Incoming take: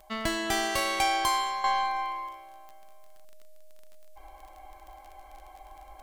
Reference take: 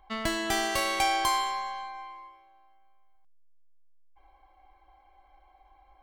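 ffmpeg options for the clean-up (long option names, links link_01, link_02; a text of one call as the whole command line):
ffmpeg -i in.wav -af "adeclick=threshold=4,bandreject=frequency=620:width=30,agate=range=-21dB:threshold=-42dB,asetnsamples=nb_out_samples=441:pad=0,asendcmd='1.64 volume volume -10.5dB',volume=0dB" out.wav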